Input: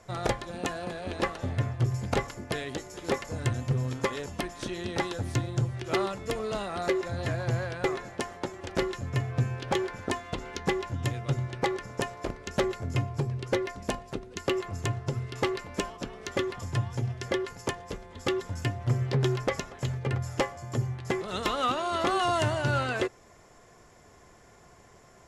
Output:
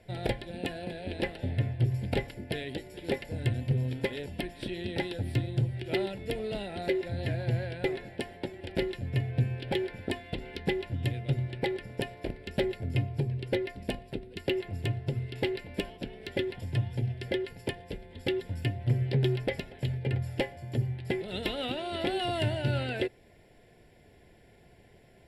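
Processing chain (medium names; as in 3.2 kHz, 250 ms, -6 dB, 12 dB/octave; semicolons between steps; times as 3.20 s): static phaser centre 2.8 kHz, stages 4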